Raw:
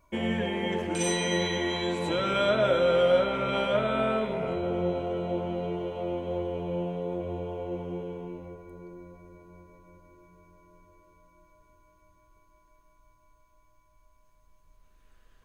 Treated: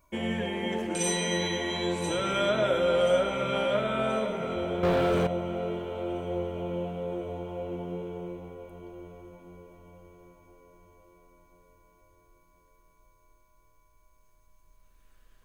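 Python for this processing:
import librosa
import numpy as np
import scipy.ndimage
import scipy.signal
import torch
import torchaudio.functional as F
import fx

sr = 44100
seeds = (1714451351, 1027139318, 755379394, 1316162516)

y = fx.high_shelf(x, sr, hz=6800.0, db=8.5)
y = fx.echo_alternate(y, sr, ms=515, hz=1200.0, feedback_pct=66, wet_db=-8.5)
y = fx.leveller(y, sr, passes=3, at=(4.83, 5.27))
y = y * librosa.db_to_amplitude(-2.0)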